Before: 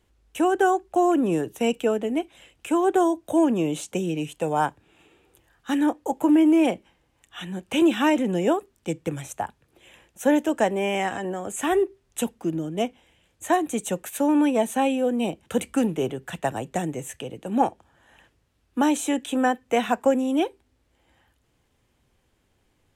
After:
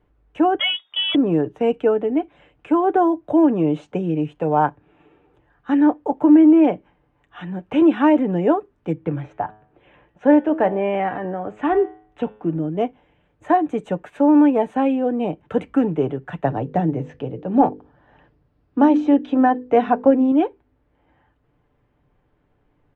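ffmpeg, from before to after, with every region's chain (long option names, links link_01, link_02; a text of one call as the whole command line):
ffmpeg -i in.wav -filter_complex "[0:a]asettb=1/sr,asplit=3[link_01][link_02][link_03];[link_01]atrim=end=0.594[link_04];[link_02]atrim=start=0.59:end=1.15,asetpts=PTS-STARTPTS,afade=type=in:duration=0.004:curve=qsin,afade=type=out:start_time=0.556:duration=0.004:curve=qsin,acontrast=55,aecho=1:1:7.2:0.3,atrim=end_sample=24696,lowpass=frequency=3100:width_type=q:width=0.5098,lowpass=frequency=3100:width_type=q:width=0.6013,lowpass=frequency=3100:width_type=q:width=0.9,lowpass=frequency=3100:width_type=q:width=2.563,afreqshift=-3700[link_05];[link_03]atrim=start=1.146[link_06];[link_04][link_05]acrossfade=duration=0.004:curve1=hsin:curve2=qsin[link_07];[link_07][link_06]acrossfade=duration=0.004:curve1=qsin:curve2=hsin,asettb=1/sr,asplit=3[link_08][link_09][link_10];[link_08]atrim=end=8.944[link_11];[link_09]atrim=start=8.94:end=12.6,asetpts=PTS-STARTPTS,afade=type=in:duration=0.004:curve=qsin,afade=type=out:start_time=3.656:duration=0.004:curve=qsin,lowpass=4200,bandreject=frequency=106.4:width_type=h:width=4,bandreject=frequency=212.8:width_type=h:width=4,bandreject=frequency=319.2:width_type=h:width=4,bandreject=frequency=425.6:width_type=h:width=4,bandreject=frequency=532:width_type=h:width=4,bandreject=frequency=638.4:width_type=h:width=4,bandreject=frequency=744.8:width_type=h:width=4,bandreject=frequency=851.2:width_type=h:width=4,bandreject=frequency=957.6:width_type=h:width=4,bandreject=frequency=1064:width_type=h:width=4,bandreject=frequency=1170.4:width_type=h:width=4,bandreject=frequency=1276.8:width_type=h:width=4,bandreject=frequency=1383.2:width_type=h:width=4,bandreject=frequency=1489.6:width_type=h:width=4,bandreject=frequency=1596:width_type=h:width=4,bandreject=frequency=1702.4:width_type=h:width=4,bandreject=frequency=1808.8:width_type=h:width=4,bandreject=frequency=1915.2:width_type=h:width=4,bandreject=frequency=2021.6:width_type=h:width=4,bandreject=frequency=2128:width_type=h:width=4,bandreject=frequency=2234.4:width_type=h:width=4,bandreject=frequency=2340.8:width_type=h:width=4,bandreject=frequency=2447.2:width_type=h:width=4,bandreject=frequency=2553.6:width_type=h:width=4,bandreject=frequency=2660:width_type=h:width=4,bandreject=frequency=2766.4:width_type=h:width=4,bandreject=frequency=2872.8:width_type=h:width=4,bandreject=frequency=2979.2:width_type=h:width=4,bandreject=frequency=3085.6:width_type=h:width=4,bandreject=frequency=3192:width_type=h:width=4,bandreject=frequency=3298.4:width_type=h:width=4,bandreject=frequency=3404.8:width_type=h:width=4,bandreject=frequency=3511.2:width_type=h:width=4,bandreject=frequency=3617.6:width_type=h:width=4,bandreject=frequency=3724:width_type=h:width=4[link_12];[link_10]atrim=start=12.596[link_13];[link_11][link_12]acrossfade=duration=0.004:curve1=hsin:curve2=qsin[link_14];[link_14][link_13]acrossfade=duration=0.004:curve1=qsin:curve2=hsin,asettb=1/sr,asplit=3[link_15][link_16][link_17];[link_15]atrim=end=16.444[link_18];[link_16]atrim=start=16.44:end=20.32,asetpts=PTS-STARTPTS,afade=type=in:duration=0.004:curve=qsin,afade=type=out:start_time=3.876:duration=0.004:curve=qsin,lowpass=frequency=5000:width_type=q:width=3.5,tiltshelf=frequency=860:gain=4.5,bandreject=frequency=50:width_type=h:width=6,bandreject=frequency=100:width_type=h:width=6,bandreject=frequency=150:width_type=h:width=6,bandreject=frequency=200:width_type=h:width=6,bandreject=frequency=250:width_type=h:width=6,bandreject=frequency=300:width_type=h:width=6,bandreject=frequency=350:width_type=h:width=6,bandreject=frequency=400:width_type=h:width=6,bandreject=frequency=450:width_type=h:width=6,bandreject=frequency=500:width_type=h:width=6[link_19];[link_17]atrim=start=20.316[link_20];[link_18][link_19]acrossfade=duration=0.004:curve1=hsin:curve2=qsin[link_21];[link_21][link_20]acrossfade=duration=0.004:curve1=qsin:curve2=hsin,lowpass=1500,aecho=1:1:6.8:0.4,volume=4dB" out.wav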